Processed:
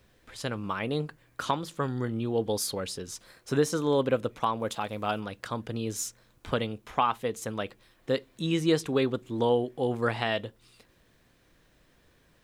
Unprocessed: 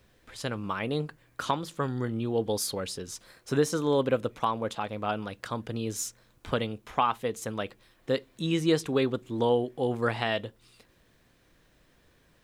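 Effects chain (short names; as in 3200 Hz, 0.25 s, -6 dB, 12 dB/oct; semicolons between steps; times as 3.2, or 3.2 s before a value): 4.59–5.19 high shelf 8200 Hz -> 4600 Hz +10.5 dB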